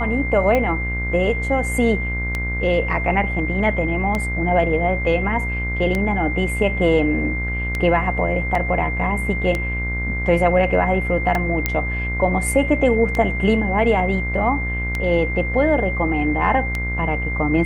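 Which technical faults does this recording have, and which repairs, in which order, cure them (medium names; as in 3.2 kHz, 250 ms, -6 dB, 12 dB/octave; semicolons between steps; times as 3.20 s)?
buzz 60 Hz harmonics 39 -25 dBFS
tick 33 1/3 rpm -9 dBFS
whine 2.1 kHz -25 dBFS
8.55 s: dropout 2.9 ms
11.66 s: pop -4 dBFS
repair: de-click; band-stop 2.1 kHz, Q 30; de-hum 60 Hz, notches 39; interpolate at 8.55 s, 2.9 ms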